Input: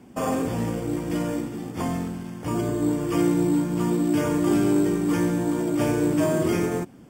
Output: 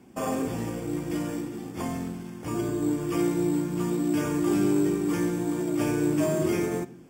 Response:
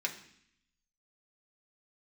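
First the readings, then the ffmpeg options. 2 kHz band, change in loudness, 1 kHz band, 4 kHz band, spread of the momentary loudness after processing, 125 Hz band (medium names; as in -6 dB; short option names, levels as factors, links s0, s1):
-3.0 dB, -3.5 dB, -4.5 dB, -3.5 dB, 9 LU, -4.5 dB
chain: -filter_complex "[0:a]asplit=2[s0][s1];[1:a]atrim=start_sample=2205,lowshelf=f=490:g=7.5,highshelf=f=5200:g=10.5[s2];[s1][s2]afir=irnorm=-1:irlink=0,volume=0.299[s3];[s0][s3]amix=inputs=2:normalize=0,volume=0.473"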